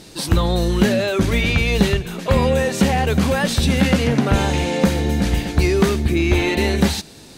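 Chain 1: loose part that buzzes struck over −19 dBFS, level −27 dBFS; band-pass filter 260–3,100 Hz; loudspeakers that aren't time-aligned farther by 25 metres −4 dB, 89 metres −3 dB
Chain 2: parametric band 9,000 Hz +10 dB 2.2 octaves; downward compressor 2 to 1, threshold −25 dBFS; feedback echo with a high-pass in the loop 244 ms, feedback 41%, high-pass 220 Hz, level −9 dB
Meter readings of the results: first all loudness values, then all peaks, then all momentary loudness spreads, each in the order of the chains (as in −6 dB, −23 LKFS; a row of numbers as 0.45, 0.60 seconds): −19.0, −23.0 LKFS; −2.5, −9.0 dBFS; 4, 3 LU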